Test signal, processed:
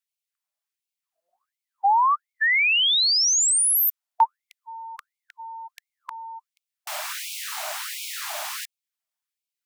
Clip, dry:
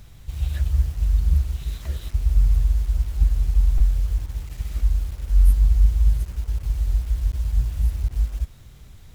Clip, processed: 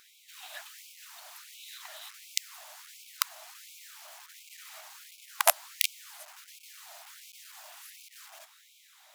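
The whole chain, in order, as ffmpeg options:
-af "aeval=exprs='(mod(2.51*val(0)+1,2)-1)/2.51':c=same,highpass=f=430:t=q:w=4.9,afftfilt=real='re*gte(b*sr/1024,570*pow(2200/570,0.5+0.5*sin(2*PI*1.4*pts/sr)))':imag='im*gte(b*sr/1024,570*pow(2200/570,0.5+0.5*sin(2*PI*1.4*pts/sr)))':win_size=1024:overlap=0.75"

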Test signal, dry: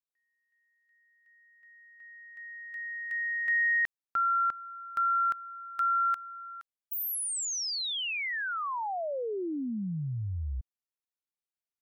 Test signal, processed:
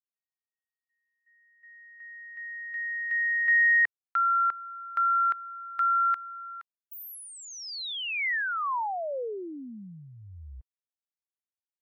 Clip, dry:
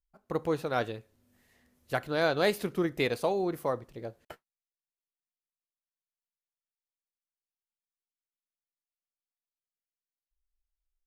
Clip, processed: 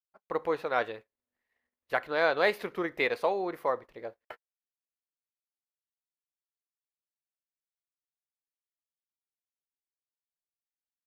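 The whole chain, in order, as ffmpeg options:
-af "agate=range=-33dB:threshold=-59dB:ratio=3:release=29:detection=peak,equalizer=f=125:t=o:w=1:g=-7,equalizer=f=500:t=o:w=1:g=7,equalizer=f=1k:t=o:w=1:g=9,equalizer=f=2k:t=o:w=1:g=11,equalizer=f=4k:t=o:w=1:g=4,equalizer=f=8k:t=o:w=1:g=-5,volume=-8dB"

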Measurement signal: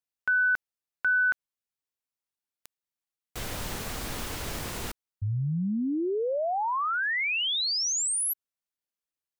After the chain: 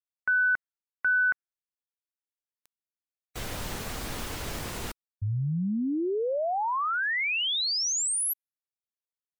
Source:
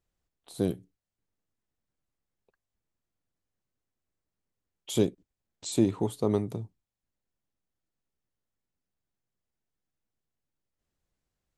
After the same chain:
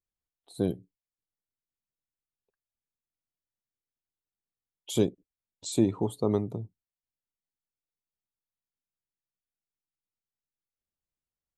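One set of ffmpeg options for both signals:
-af "afftdn=nr=14:nf=-50"

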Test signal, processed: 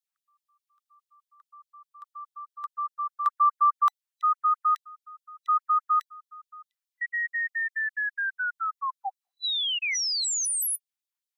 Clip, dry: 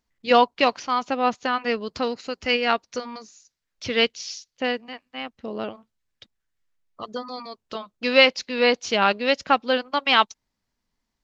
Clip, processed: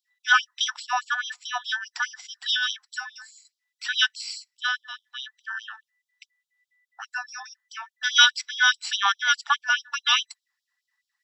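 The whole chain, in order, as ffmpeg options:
-af "afftfilt=real='real(if(between(b,1,1012),(2*floor((b-1)/92)+1)*92-b,b),0)':imag='imag(if(between(b,1,1012),(2*floor((b-1)/92)+1)*92-b,b),0)*if(between(b,1,1012),-1,1)':win_size=2048:overlap=0.75,afftfilt=real='re*gte(b*sr/1024,680*pow(3100/680,0.5+0.5*sin(2*PI*4.8*pts/sr)))':imag='im*gte(b*sr/1024,680*pow(3100/680,0.5+0.5*sin(2*PI*4.8*pts/sr)))':win_size=1024:overlap=0.75"

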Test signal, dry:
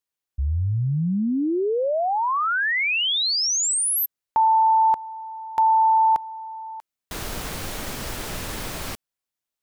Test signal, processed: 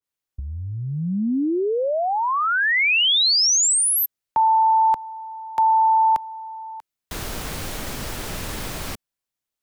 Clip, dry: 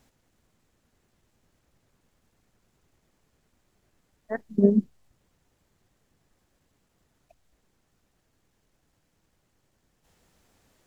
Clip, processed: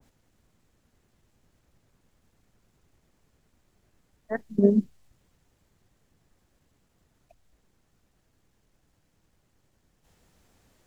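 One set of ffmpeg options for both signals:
-filter_complex "[0:a]lowshelf=f=200:g=4,acrossover=split=200|640[a][b][c];[a]acompressor=threshold=-33dB:ratio=6:attack=22:release=35:knee=1:detection=peak[d];[d][b][c]amix=inputs=3:normalize=0,adynamicequalizer=threshold=0.02:dfrequency=1600:dqfactor=0.7:tfrequency=1600:tqfactor=0.7:attack=5:release=100:ratio=0.375:range=2.5:mode=boostabove:tftype=highshelf"

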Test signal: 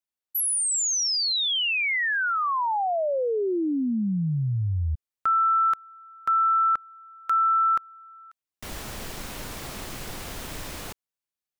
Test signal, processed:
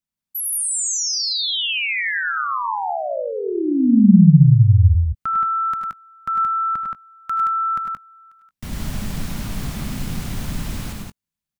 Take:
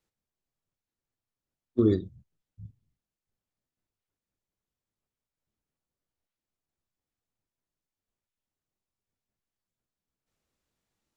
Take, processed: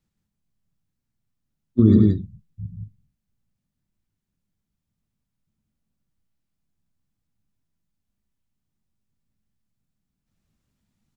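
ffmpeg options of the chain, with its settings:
-af "lowshelf=f=290:t=q:w=1.5:g=10.5,aecho=1:1:79|98|103|174|193:0.224|0.376|0.447|0.668|0.133"

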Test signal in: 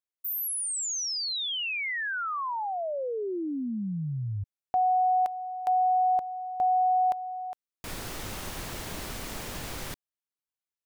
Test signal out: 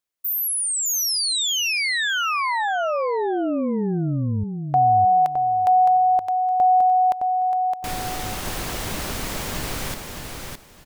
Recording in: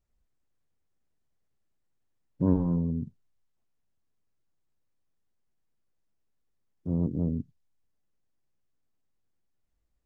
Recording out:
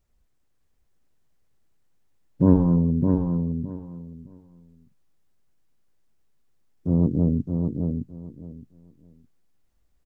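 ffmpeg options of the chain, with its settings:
-af "aecho=1:1:614|1228|1842:0.562|0.112|0.0225,volume=7.5dB"

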